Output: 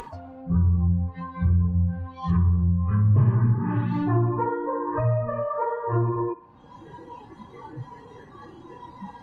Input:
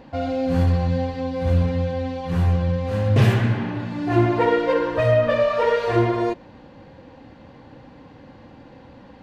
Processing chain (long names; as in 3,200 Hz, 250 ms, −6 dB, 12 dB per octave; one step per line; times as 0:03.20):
treble cut that deepens with the level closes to 1,100 Hz, closed at −18 dBFS
upward compression, threshold −22 dBFS
noise reduction from a noise print of the clip's start 20 dB
downward compressor 4 to 1, threshold −24 dBFS, peak gain reduction 11 dB
graphic EQ with 10 bands 125 Hz +4 dB, 500 Hz −8 dB, 1,000 Hz +8 dB, 2,000 Hz −6 dB, 4,000 Hz −6 dB
delay with a band-pass on its return 62 ms, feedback 57%, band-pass 1,400 Hz, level −13 dB
dynamic equaliser 750 Hz, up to −4 dB, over −43 dBFS, Q 1.5
level +4 dB
Opus 32 kbit/s 48,000 Hz